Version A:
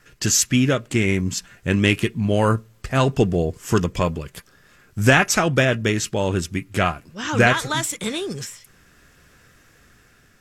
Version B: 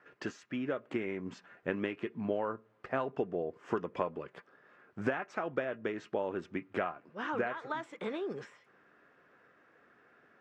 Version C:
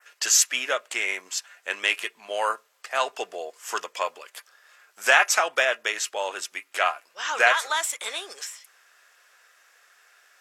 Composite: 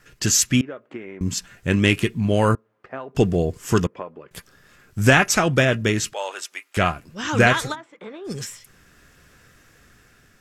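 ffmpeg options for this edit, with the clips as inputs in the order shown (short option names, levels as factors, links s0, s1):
-filter_complex "[1:a]asplit=4[s0][s1][s2][s3];[0:a]asplit=6[s4][s5][s6][s7][s8][s9];[s4]atrim=end=0.612[s10];[s0]atrim=start=0.608:end=1.212[s11];[s5]atrim=start=1.208:end=2.552[s12];[s1]atrim=start=2.548:end=3.152[s13];[s6]atrim=start=3.148:end=3.872[s14];[s2]atrim=start=3.868:end=4.312[s15];[s7]atrim=start=4.308:end=6.132[s16];[2:a]atrim=start=6.128:end=6.772[s17];[s8]atrim=start=6.768:end=7.76[s18];[s3]atrim=start=7.7:end=8.3[s19];[s9]atrim=start=8.24[s20];[s10][s11]acrossfade=d=0.004:c1=hsin:c2=hsin[s21];[s21][s12]acrossfade=d=0.004:c1=hsin:c2=hsin[s22];[s22][s13]acrossfade=d=0.004:c1=hsin:c2=hsin[s23];[s23][s14]acrossfade=d=0.004:c1=hsin:c2=hsin[s24];[s24][s15]acrossfade=d=0.004:c1=hsin:c2=hsin[s25];[s25][s16]acrossfade=d=0.004:c1=hsin:c2=hsin[s26];[s26][s17]acrossfade=d=0.004:c1=hsin:c2=hsin[s27];[s27][s18]acrossfade=d=0.004:c1=hsin:c2=hsin[s28];[s28][s19]acrossfade=d=0.06:c1=tri:c2=tri[s29];[s29][s20]acrossfade=d=0.06:c1=tri:c2=tri"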